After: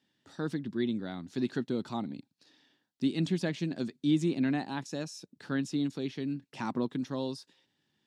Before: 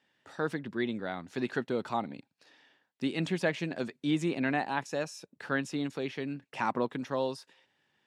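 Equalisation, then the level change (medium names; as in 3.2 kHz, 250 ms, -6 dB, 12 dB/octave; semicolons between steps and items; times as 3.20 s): bass shelf 130 Hz -4 dB; high-order bell 1.1 kHz -11.5 dB 3 oct; treble shelf 6.4 kHz -8.5 dB; +4.5 dB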